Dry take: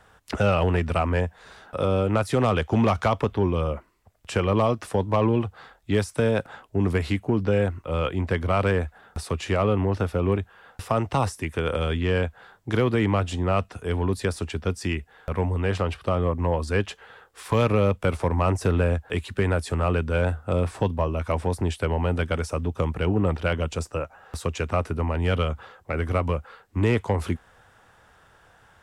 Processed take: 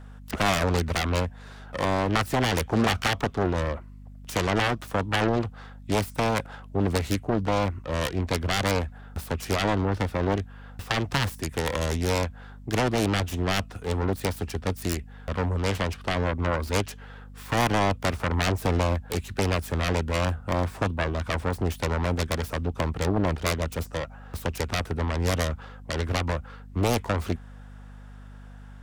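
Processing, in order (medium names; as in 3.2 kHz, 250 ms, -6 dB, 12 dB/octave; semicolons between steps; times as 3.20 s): self-modulated delay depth 0.94 ms; hum 50 Hz, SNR 17 dB; trim -1 dB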